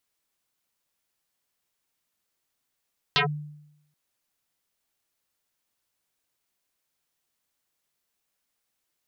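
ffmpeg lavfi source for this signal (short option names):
-f lavfi -i "aevalsrc='0.15*pow(10,-3*t/0.84)*sin(2*PI*149*t+7.9*clip(1-t/0.11,0,1)*sin(2*PI*3.87*149*t))':d=0.78:s=44100"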